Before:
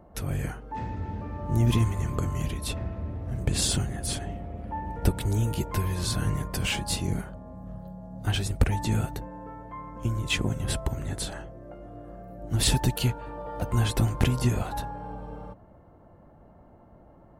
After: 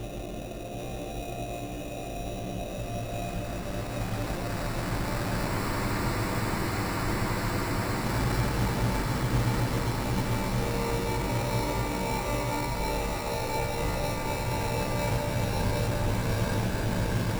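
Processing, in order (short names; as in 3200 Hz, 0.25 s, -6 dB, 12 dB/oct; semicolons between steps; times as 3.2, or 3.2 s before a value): random spectral dropouts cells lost 21%; in parallel at +2 dB: negative-ratio compressor -38 dBFS; on the sum: AM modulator 71 Hz, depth 90%; Paulstretch 9×, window 1.00 s, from 11.94; sample-rate reducer 3200 Hz, jitter 0%; split-band echo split 760 Hz, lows 0.233 s, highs 0.777 s, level -5.5 dB; spectral freeze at 5.5, 2.54 s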